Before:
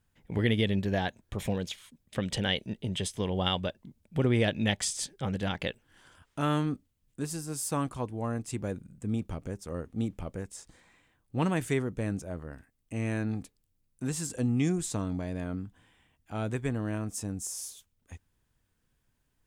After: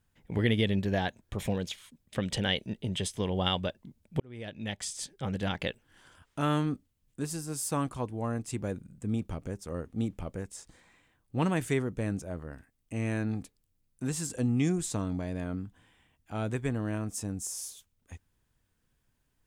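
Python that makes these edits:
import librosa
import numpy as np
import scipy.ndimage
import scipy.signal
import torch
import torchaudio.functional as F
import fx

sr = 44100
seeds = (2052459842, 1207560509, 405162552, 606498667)

y = fx.edit(x, sr, fx.fade_in_span(start_s=4.2, length_s=1.27), tone=tone)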